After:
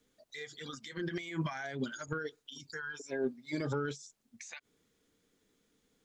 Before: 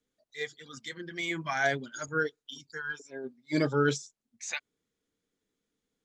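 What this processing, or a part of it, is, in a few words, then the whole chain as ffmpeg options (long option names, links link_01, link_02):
de-esser from a sidechain: -filter_complex "[0:a]asplit=2[link_01][link_02];[link_02]highpass=frequency=5700:poles=1,apad=whole_len=266550[link_03];[link_01][link_03]sidechaincompress=threshold=-58dB:ratio=20:attack=3.3:release=64,volume=9.5dB"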